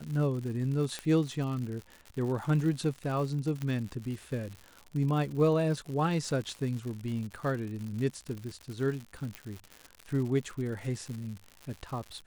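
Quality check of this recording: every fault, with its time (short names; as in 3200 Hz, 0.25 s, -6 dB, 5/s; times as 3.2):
crackle 140/s -37 dBFS
0.99 pop -20 dBFS
3.62 pop -22 dBFS
9.35 pop -21 dBFS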